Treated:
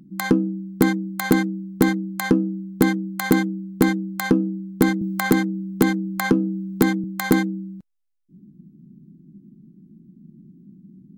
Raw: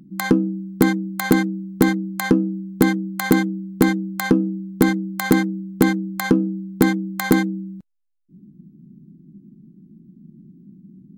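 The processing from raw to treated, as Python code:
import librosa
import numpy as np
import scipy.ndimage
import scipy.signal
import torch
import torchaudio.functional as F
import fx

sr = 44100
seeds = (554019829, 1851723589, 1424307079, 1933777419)

y = fx.band_squash(x, sr, depth_pct=40, at=(5.01, 7.04))
y = y * librosa.db_to_amplitude(-1.5)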